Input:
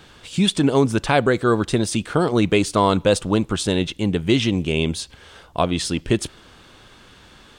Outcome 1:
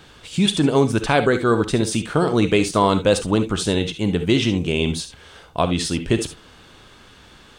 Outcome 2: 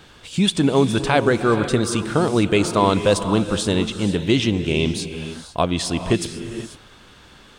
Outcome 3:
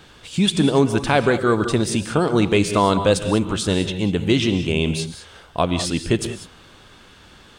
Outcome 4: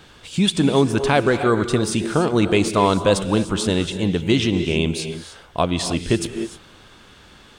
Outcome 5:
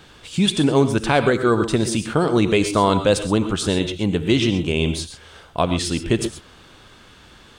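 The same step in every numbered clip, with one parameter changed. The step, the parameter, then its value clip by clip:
non-linear reverb, gate: 90, 520, 220, 330, 150 ms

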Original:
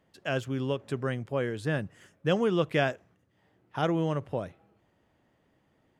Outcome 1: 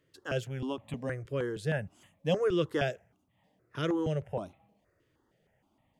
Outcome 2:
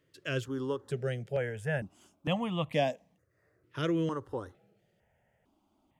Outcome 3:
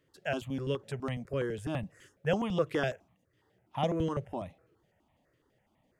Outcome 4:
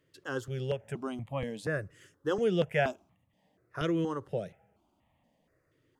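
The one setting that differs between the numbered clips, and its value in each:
step phaser, rate: 6.4, 2.2, 12, 4.2 Hz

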